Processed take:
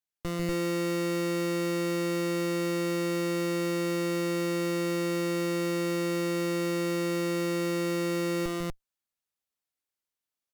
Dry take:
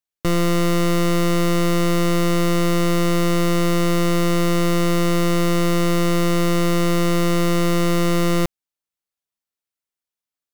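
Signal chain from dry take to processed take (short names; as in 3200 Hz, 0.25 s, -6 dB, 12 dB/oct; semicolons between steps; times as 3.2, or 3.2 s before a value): one-sided clip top -32 dBFS, bottom -22 dBFS; loudspeakers at several distances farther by 50 m -6 dB, 83 m 0 dB; gain -4.5 dB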